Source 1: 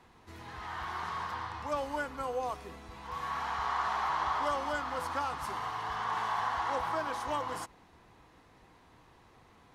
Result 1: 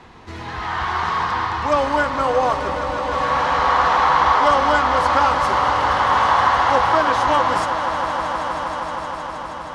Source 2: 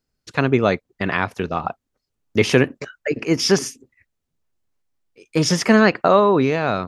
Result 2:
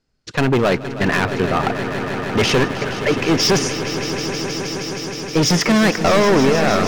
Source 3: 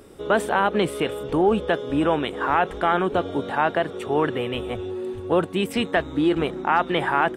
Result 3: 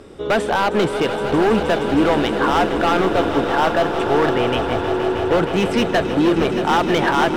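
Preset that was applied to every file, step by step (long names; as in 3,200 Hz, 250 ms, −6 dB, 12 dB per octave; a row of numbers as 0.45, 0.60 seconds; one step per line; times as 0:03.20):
low-pass filter 6,200 Hz 12 dB per octave
hard clipping −19 dBFS
on a send: echo that builds up and dies away 157 ms, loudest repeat 5, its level −12.5 dB
on the sum: loudness normalisation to −18 LKFS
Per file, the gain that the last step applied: +15.5, +7.0, +6.0 decibels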